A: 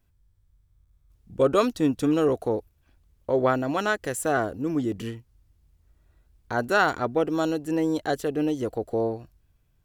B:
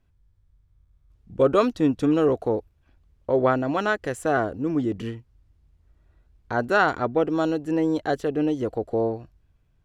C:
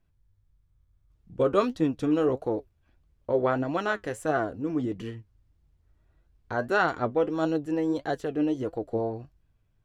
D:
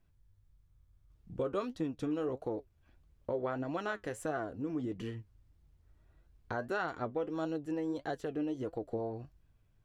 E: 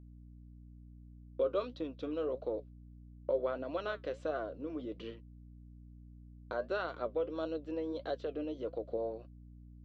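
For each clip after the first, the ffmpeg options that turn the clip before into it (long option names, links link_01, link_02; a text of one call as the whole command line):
ffmpeg -i in.wav -af "aemphasis=mode=reproduction:type=50fm,volume=1.5dB" out.wav
ffmpeg -i in.wav -af "flanger=delay=5.8:depth=4.4:regen=60:speed=1.6:shape=sinusoidal" out.wav
ffmpeg -i in.wav -af "acompressor=threshold=-37dB:ratio=2.5" out.wav
ffmpeg -i in.wav -af "highpass=370,equalizer=frequency=560:width_type=q:width=4:gain=8,equalizer=frequency=820:width_type=q:width=4:gain=-9,equalizer=frequency=1800:width_type=q:width=4:gain=-9,equalizer=frequency=3800:width_type=q:width=4:gain=5,lowpass=frequency=4600:width=0.5412,lowpass=frequency=4600:width=1.3066,agate=range=-32dB:threshold=-51dB:ratio=16:detection=peak,aeval=exprs='val(0)+0.00251*(sin(2*PI*60*n/s)+sin(2*PI*2*60*n/s)/2+sin(2*PI*3*60*n/s)/3+sin(2*PI*4*60*n/s)/4+sin(2*PI*5*60*n/s)/5)':channel_layout=same" out.wav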